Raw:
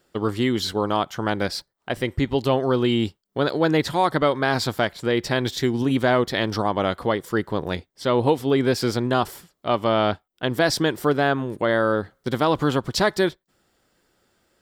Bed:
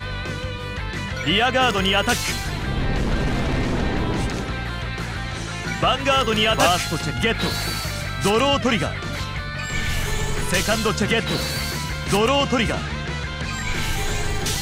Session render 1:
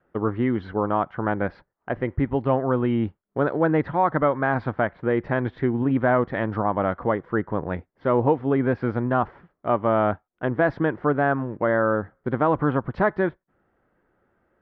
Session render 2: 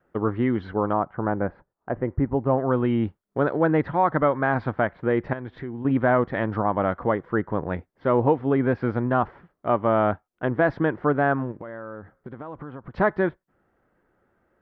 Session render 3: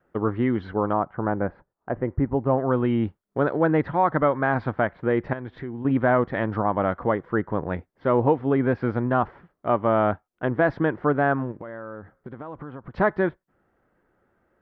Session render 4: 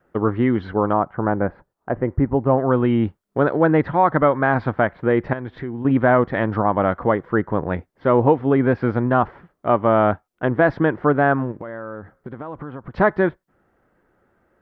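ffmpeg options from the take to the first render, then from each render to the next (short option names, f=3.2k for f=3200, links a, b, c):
-af "lowpass=f=1.8k:w=0.5412,lowpass=f=1.8k:w=1.3066,adynamicequalizer=threshold=0.0141:dfrequency=390:dqfactor=3.5:tfrequency=390:tqfactor=3.5:attack=5:release=100:ratio=0.375:range=3:mode=cutabove:tftype=bell"
-filter_complex "[0:a]asettb=1/sr,asplit=3[a][b][c];[a]atrim=end=0.934[d];[b]atrim=start=0.93:end=2.58,asetpts=PTS-STARTPTS,afade=t=in:d=0.004:c=qsin,afade=t=out:st=1.646:d=0.004:c=qsin,lowpass=1.3k[e];[c]atrim=start=2.576[f];[d][e]acrossfade=d=0.004:c1=hsin:c2=qsin[g];[g][f]acrossfade=d=0.004:c1=qsin:c2=hsin,asettb=1/sr,asplit=3[h][i][j];[h]atrim=end=5.334[k];[i]atrim=start=5.33:end=5.85,asetpts=PTS-STARTPTS,afade=t=in:d=0.004:c=qsin,afade=t=out:st=0.516:d=0.004:c=qsin,acompressor=threshold=-34dB:ratio=2.5:attack=3.2:release=140:knee=1:detection=peak[l];[j]atrim=start=5.846[m];[k][l]acrossfade=d=0.004:c1=hsin:c2=qsin[n];[n][m]acrossfade=d=0.004:c1=qsin:c2=hsin,asplit=3[o][p][q];[o]afade=t=out:st=11.51:d=0.02[r];[p]acompressor=threshold=-34dB:ratio=6:attack=3.2:release=140:knee=1:detection=peak,afade=t=in:st=11.51:d=0.02,afade=t=out:st=12.94:d=0.02[s];[q]afade=t=in:st=12.94:d=0.02[t];[r][s][t]amix=inputs=3:normalize=0"
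-af anull
-af "volume=4.5dB"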